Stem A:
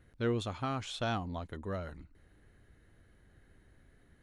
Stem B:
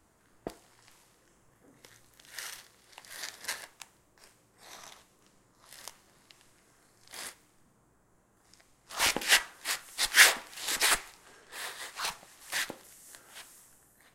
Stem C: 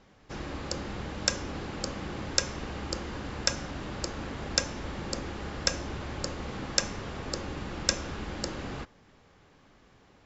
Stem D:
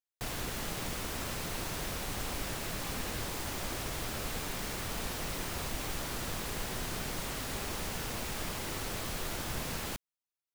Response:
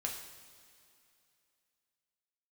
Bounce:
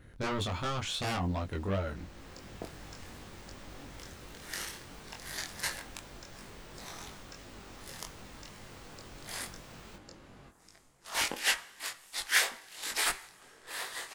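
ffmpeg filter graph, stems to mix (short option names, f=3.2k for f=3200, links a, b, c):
-filter_complex "[0:a]aeval=exprs='0.0891*sin(PI/2*3.98*val(0)/0.0891)':c=same,volume=-5dB,asplit=2[a][b];[1:a]dynaudnorm=f=140:g=7:m=13.5dB,adelay=2150,volume=-9.5dB,asplit=2[c][d];[d]volume=-15.5dB[e];[2:a]alimiter=limit=-13.5dB:level=0:latency=1:release=196,adelay=1650,volume=-14dB[f];[3:a]equalizer=f=12k:w=1.4:g=-13,volume=-10.5dB[g];[b]apad=whole_len=464841[h];[g][h]sidechaincompress=threshold=-36dB:ratio=8:attack=16:release=990[i];[4:a]atrim=start_sample=2205[j];[e][j]afir=irnorm=-1:irlink=0[k];[a][c][f][i][k]amix=inputs=5:normalize=0,flanger=delay=20:depth=3.1:speed=2.8"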